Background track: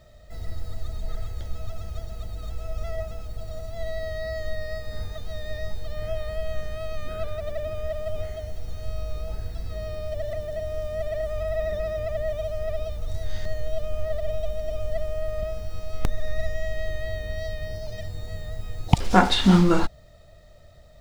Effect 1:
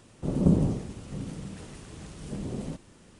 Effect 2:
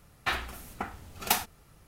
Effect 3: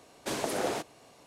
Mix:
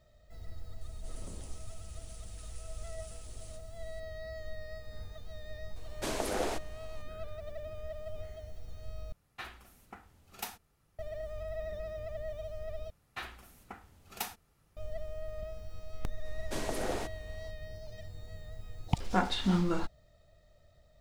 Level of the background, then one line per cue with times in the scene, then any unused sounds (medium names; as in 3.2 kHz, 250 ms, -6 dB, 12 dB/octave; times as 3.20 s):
background track -12 dB
0.81 s: add 1 -0.5 dB + differentiator
5.76 s: add 3 -2.5 dB
9.12 s: replace with 2 -14.5 dB
12.90 s: replace with 2 -12 dB
16.25 s: add 3 -5.5 dB + bass shelf 140 Hz +9.5 dB